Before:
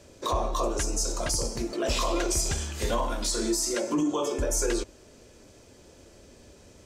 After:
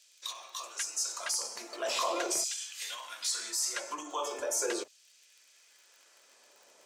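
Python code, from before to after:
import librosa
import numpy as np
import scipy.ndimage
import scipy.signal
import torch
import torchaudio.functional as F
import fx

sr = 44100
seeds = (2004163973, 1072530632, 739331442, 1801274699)

y = fx.dmg_crackle(x, sr, seeds[0], per_s=49.0, level_db=-43.0)
y = fx.filter_lfo_highpass(y, sr, shape='saw_down', hz=0.41, low_hz=470.0, high_hz=3400.0, q=1.1)
y = y * 10.0 ** (-3.0 / 20.0)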